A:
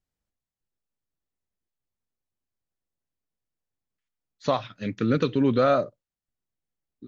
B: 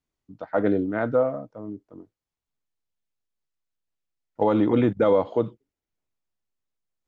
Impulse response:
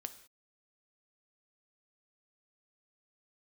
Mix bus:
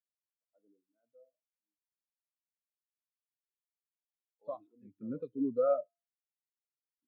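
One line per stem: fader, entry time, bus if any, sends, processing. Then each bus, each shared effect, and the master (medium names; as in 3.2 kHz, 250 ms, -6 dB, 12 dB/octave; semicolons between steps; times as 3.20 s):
-0.5 dB, 0.00 s, no send, feedback comb 98 Hz, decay 0.96 s, harmonics odd, mix 50%
-19.5 dB, 0.00 s, no send, de-hum 55.63 Hz, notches 37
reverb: none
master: bass shelf 490 Hz -5.5 dB; spectral contrast expander 2.5:1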